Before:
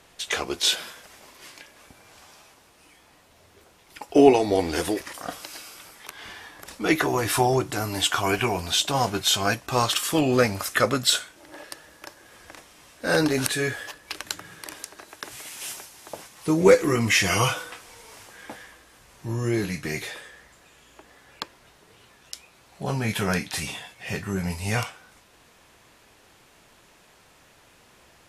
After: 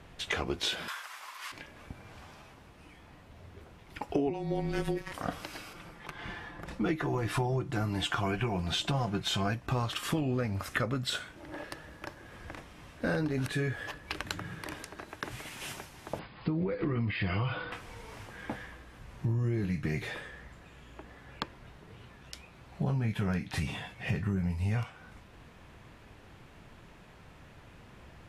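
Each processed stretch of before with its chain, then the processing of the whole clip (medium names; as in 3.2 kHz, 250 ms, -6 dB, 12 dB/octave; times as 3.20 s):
0.88–1.52 s: resonant high-pass 1.1 kHz, resonance Q 2.7 + treble shelf 3 kHz +10.5 dB
4.30–5.12 s: robot voice 191 Hz + frequency shift -25 Hz
5.73–9.48 s: low-pass 12 kHz + comb 5.8 ms, depth 39% + tape noise reduction on one side only decoder only
16.19–17.72 s: brick-wall FIR low-pass 5.1 kHz + compression, threshold -24 dBFS
whole clip: tone controls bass +11 dB, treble -12 dB; compression 8:1, threshold -28 dBFS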